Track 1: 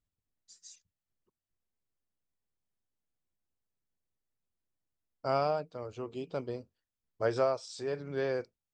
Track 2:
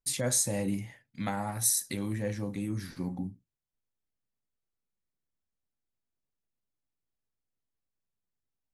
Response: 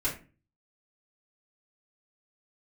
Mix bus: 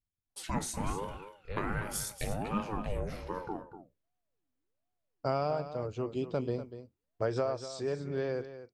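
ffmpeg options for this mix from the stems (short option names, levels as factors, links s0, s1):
-filter_complex "[0:a]agate=range=0.398:threshold=0.00178:ratio=16:detection=peak,acompressor=threshold=0.0316:ratio=6,volume=0.75,asplit=2[s0][s1];[s1]volume=0.251[s2];[1:a]bass=f=250:g=-11,treble=f=4000:g=-11,aeval=exprs='val(0)*sin(2*PI*490*n/s+490*0.5/1.3*sin(2*PI*1.3*n/s))':c=same,adelay=300,volume=0.891,asplit=3[s3][s4][s5];[s4]volume=0.106[s6];[s5]volume=0.299[s7];[2:a]atrim=start_sample=2205[s8];[s6][s8]afir=irnorm=-1:irlink=0[s9];[s2][s7]amix=inputs=2:normalize=0,aecho=0:1:243:1[s10];[s0][s3][s9][s10]amix=inputs=4:normalize=0,lowshelf=f=340:g=7,dynaudnorm=f=210:g=17:m=1.58"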